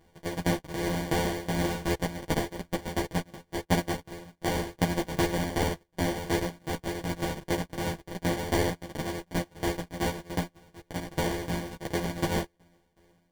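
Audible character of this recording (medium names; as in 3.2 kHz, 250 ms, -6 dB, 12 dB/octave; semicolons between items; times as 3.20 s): a buzz of ramps at a fixed pitch in blocks of 256 samples; tremolo saw down 2.7 Hz, depth 90%; aliases and images of a low sample rate 1.3 kHz, jitter 0%; a shimmering, thickened sound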